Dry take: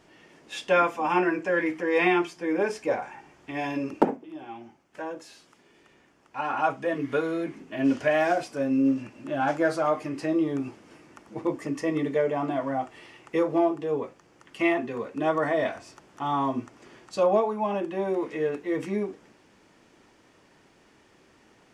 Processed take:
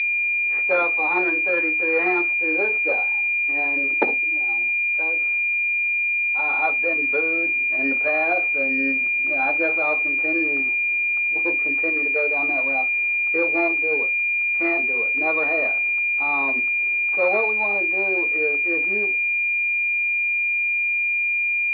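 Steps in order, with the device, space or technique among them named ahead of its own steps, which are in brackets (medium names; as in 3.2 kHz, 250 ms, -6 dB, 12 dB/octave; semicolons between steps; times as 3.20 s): toy sound module (decimation joined by straight lines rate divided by 8×; class-D stage that switches slowly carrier 2.4 kHz; cabinet simulation 530–4400 Hz, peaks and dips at 630 Hz -6 dB, 1 kHz -7 dB, 2 kHz +9 dB, 3.7 kHz +6 dB); 11.89–12.39 s: peaking EQ 69 Hz -15 dB 2.3 oct; trim +6.5 dB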